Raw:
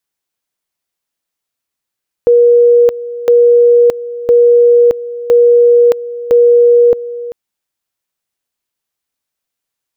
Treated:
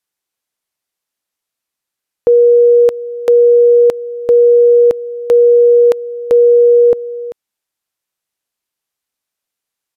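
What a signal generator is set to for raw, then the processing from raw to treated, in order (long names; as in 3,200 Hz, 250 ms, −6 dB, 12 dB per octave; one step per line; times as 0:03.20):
tone at two levels in turn 478 Hz −3.5 dBFS, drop 16 dB, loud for 0.62 s, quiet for 0.39 s, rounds 5
low-shelf EQ 170 Hz −4.5 dB
downsampling to 32,000 Hz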